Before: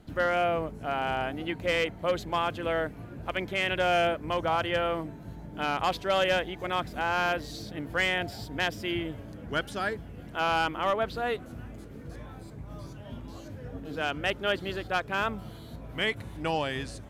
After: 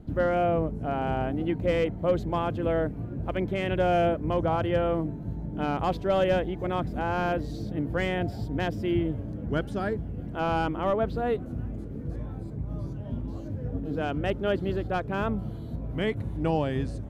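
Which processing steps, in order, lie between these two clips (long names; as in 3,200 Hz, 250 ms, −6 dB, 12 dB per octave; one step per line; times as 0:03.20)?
tilt shelving filter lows +9.5 dB, about 780 Hz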